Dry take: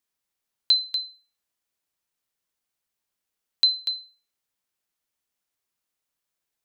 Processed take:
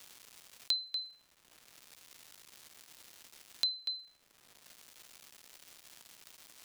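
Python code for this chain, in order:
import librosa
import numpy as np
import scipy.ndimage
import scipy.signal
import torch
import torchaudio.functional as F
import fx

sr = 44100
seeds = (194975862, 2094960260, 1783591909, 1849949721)

y = fx.dmg_crackle(x, sr, seeds[0], per_s=450.0, level_db=-50.0)
y = fx.band_squash(y, sr, depth_pct=70)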